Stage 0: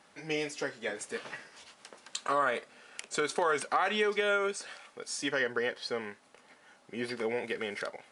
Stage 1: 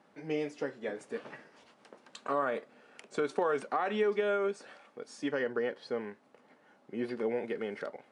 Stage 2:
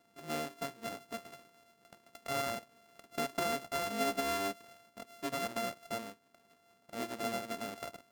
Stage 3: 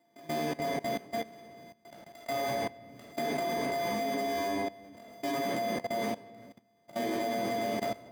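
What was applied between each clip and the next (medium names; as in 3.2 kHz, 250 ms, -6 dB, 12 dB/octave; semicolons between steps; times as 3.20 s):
high-pass 220 Hz 12 dB/octave; tilt EQ -4 dB/octave; trim -3.5 dB
sorted samples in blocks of 64 samples; trim -4.5 dB
comb of notches 1.4 kHz; simulated room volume 430 m³, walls mixed, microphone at 2.6 m; level held to a coarse grid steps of 19 dB; trim +6.5 dB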